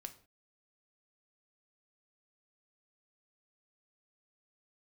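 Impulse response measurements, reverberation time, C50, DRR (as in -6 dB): not exponential, 14.5 dB, 7.0 dB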